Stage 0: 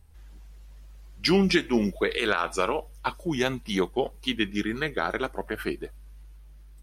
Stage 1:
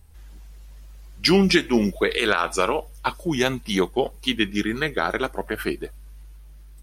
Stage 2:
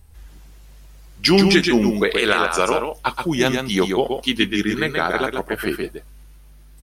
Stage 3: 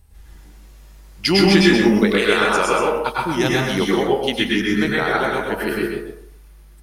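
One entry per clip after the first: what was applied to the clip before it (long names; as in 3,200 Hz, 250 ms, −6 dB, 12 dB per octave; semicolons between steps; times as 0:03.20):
high-shelf EQ 5,600 Hz +4.5 dB; level +4 dB
single-tap delay 128 ms −5 dB; level +2.5 dB
dense smooth reverb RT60 0.57 s, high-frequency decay 0.5×, pre-delay 90 ms, DRR −3 dB; level −3 dB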